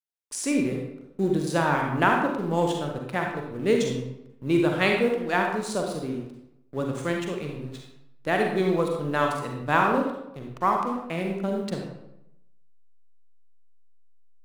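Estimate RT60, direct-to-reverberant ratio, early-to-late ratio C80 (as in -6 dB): 0.85 s, 1.0 dB, 5.5 dB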